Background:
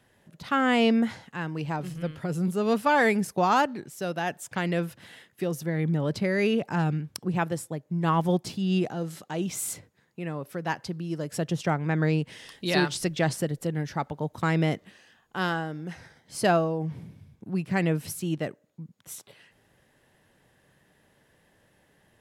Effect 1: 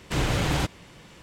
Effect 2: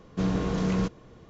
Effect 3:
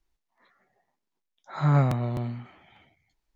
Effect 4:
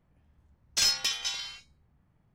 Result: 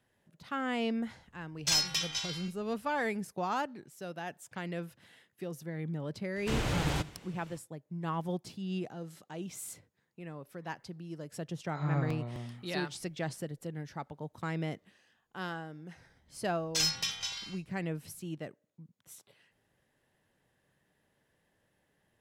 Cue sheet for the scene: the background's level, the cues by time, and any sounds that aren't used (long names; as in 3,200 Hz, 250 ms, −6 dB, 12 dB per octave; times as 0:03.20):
background −11 dB
0:00.90: mix in 4 −3 dB + gate on every frequency bin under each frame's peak −50 dB strong
0:06.36: mix in 1 −7 dB + repeating echo 84 ms, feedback 53%, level −21.5 dB
0:10.19: mix in 3 −11 dB
0:15.98: mix in 4 −4.5 dB
not used: 2